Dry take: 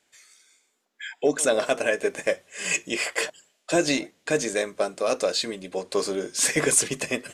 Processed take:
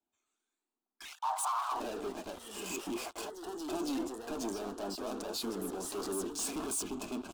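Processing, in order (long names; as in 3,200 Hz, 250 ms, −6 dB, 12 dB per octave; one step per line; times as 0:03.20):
adaptive Wiener filter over 9 samples
low-shelf EQ 490 Hz +6.5 dB
leveller curve on the samples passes 5
brickwall limiter −23 dBFS, peak gain reduction 17 dB
0:01.05–0:01.80: frequency shifter +490 Hz
phaser with its sweep stopped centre 510 Hz, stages 6
delay with pitch and tempo change per echo 144 ms, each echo +2 semitones, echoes 2, each echo −6 dB
level −7.5 dB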